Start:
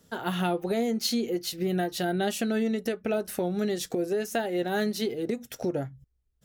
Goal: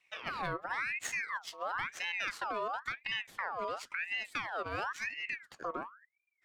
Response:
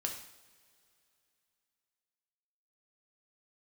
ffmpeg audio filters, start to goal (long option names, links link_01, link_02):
-af "afreqshift=-32,adynamicsmooth=sensitivity=4:basefreq=4600,aeval=exprs='val(0)*sin(2*PI*1600*n/s+1600*0.5/0.96*sin(2*PI*0.96*n/s))':channel_layout=same,volume=-6.5dB"